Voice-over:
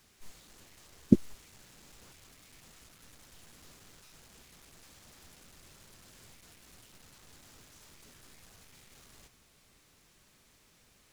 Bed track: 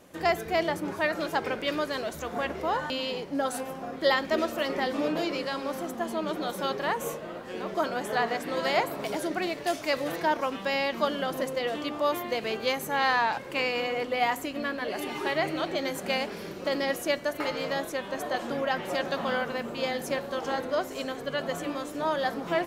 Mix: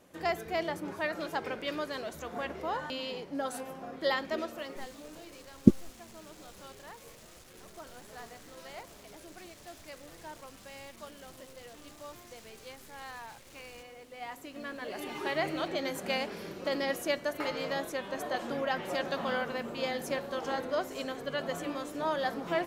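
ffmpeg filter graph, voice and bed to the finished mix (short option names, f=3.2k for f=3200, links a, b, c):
-filter_complex "[0:a]adelay=4550,volume=2dB[a];[1:a]volume=11dB,afade=t=out:st=4.21:d=0.74:silence=0.188365,afade=t=in:st=14.11:d=1.31:silence=0.141254[b];[a][b]amix=inputs=2:normalize=0"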